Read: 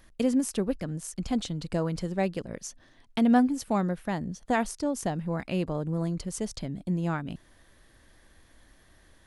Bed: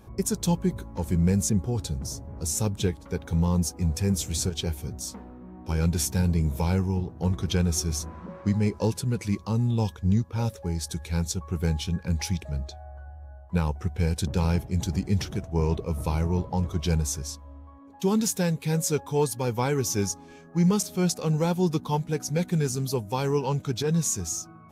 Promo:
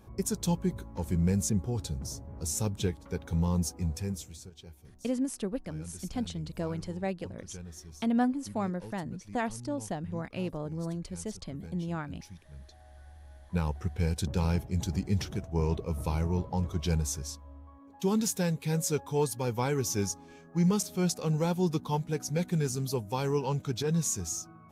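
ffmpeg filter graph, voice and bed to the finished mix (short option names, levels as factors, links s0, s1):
-filter_complex "[0:a]adelay=4850,volume=0.531[s0];[1:a]volume=3.98,afade=t=out:st=3.73:d=0.66:silence=0.158489,afade=t=in:st=12.47:d=1.26:silence=0.149624[s1];[s0][s1]amix=inputs=2:normalize=0"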